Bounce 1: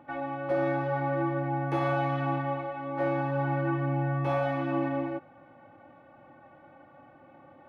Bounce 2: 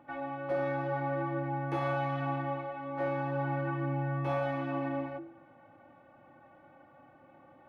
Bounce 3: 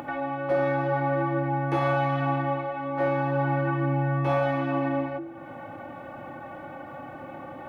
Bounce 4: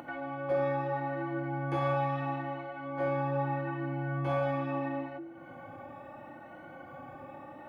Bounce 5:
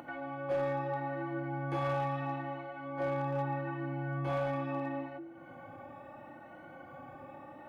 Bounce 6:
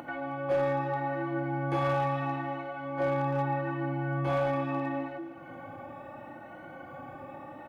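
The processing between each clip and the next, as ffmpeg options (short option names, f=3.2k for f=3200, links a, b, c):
-af "bandreject=f=47.63:t=h:w=4,bandreject=f=95.26:t=h:w=4,bandreject=f=142.89:t=h:w=4,bandreject=f=190.52:t=h:w=4,bandreject=f=238.15:t=h:w=4,bandreject=f=285.78:t=h:w=4,bandreject=f=333.41:t=h:w=4,bandreject=f=381.04:t=h:w=4,bandreject=f=428.67:t=h:w=4,bandreject=f=476.3:t=h:w=4,bandreject=f=523.93:t=h:w=4,bandreject=f=571.56:t=h:w=4,bandreject=f=619.19:t=h:w=4,bandreject=f=666.82:t=h:w=4,bandreject=f=714.45:t=h:w=4,bandreject=f=762.08:t=h:w=4,bandreject=f=809.71:t=h:w=4,bandreject=f=857.34:t=h:w=4,volume=-3.5dB"
-af "acompressor=mode=upward:threshold=-36dB:ratio=2.5,volume=7.5dB"
-af "afftfilt=real='re*pow(10,8/40*sin(2*PI*(1.9*log(max(b,1)*sr/1024/100)/log(2)-(0.76)*(pts-256)/sr)))':imag='im*pow(10,8/40*sin(2*PI*(1.9*log(max(b,1)*sr/1024/100)/log(2)-(0.76)*(pts-256)/sr)))':win_size=1024:overlap=0.75,volume=-8dB"
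-af "volume=24.5dB,asoftclip=hard,volume=-24.5dB,volume=-2.5dB"
-af "aecho=1:1:315|630|945|1260:0.133|0.0693|0.0361|0.0188,volume=5dB"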